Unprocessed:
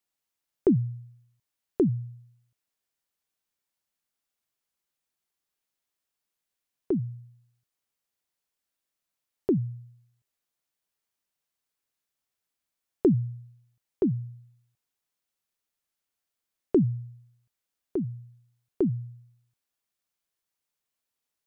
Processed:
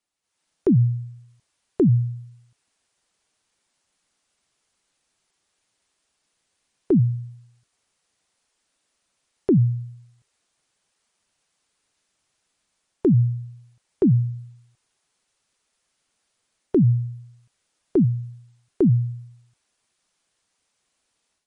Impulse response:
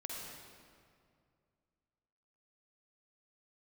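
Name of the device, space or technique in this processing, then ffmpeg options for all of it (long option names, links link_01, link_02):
low-bitrate web radio: -af "dynaudnorm=framelen=220:gausssize=3:maxgain=12dB,alimiter=limit=-14dB:level=0:latency=1,volume=2.5dB" -ar 44100 -c:a libmp3lame -b:a 40k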